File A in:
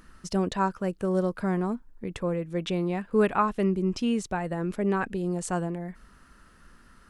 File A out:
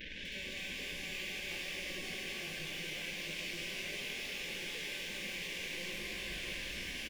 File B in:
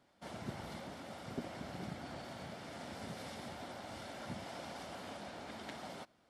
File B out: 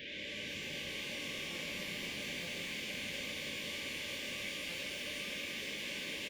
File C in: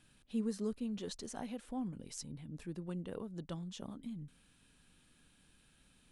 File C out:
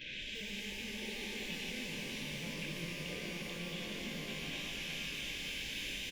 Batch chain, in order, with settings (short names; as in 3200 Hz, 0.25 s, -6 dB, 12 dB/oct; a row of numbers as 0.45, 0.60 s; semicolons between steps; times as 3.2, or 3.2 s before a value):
delta modulation 32 kbps, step -30.5 dBFS; compressor 3:1, threshold -29 dBFS; outdoor echo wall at 120 m, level -7 dB; wrapped overs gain 30.5 dB; band shelf 2800 Hz +12 dB 1 oct; gate -33 dBFS, range -10 dB; level quantiser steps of 23 dB; brick-wall FIR band-stop 620–1500 Hz; tone controls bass -5 dB, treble -11 dB; stuck buffer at 1.5/2.42/4.69, samples 256, times 8; shimmer reverb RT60 3.7 s, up +12 st, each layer -8 dB, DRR -3.5 dB; gain +1.5 dB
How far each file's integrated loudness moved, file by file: -11.0, +7.5, +2.5 LU